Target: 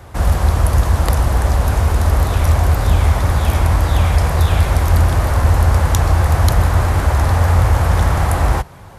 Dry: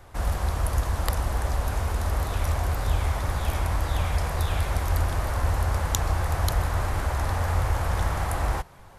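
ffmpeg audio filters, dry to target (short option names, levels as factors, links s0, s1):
-af "apsyclip=7.08,highpass=52,lowshelf=f=340:g=5.5,volume=0.398"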